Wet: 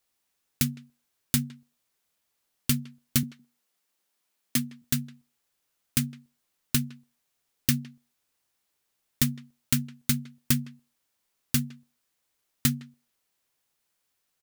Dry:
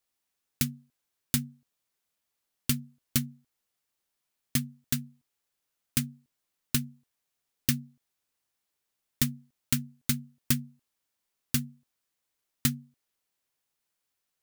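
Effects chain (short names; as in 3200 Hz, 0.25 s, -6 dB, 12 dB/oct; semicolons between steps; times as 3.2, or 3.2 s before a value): 3.23–4.82 HPF 160 Hz 24 dB/oct; in parallel at -2 dB: limiter -20 dBFS, peak gain reduction 10.5 dB; on the sum: speakerphone echo 0.16 s, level -20 dB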